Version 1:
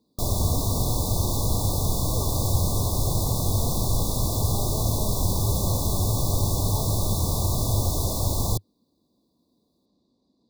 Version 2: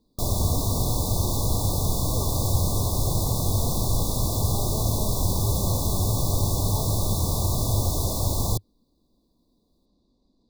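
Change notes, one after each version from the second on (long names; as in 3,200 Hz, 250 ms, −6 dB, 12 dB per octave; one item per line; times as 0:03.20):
speech: remove high-pass filter 110 Hz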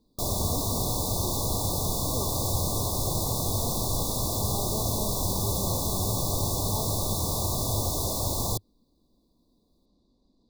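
background: add low-shelf EQ 190 Hz −8 dB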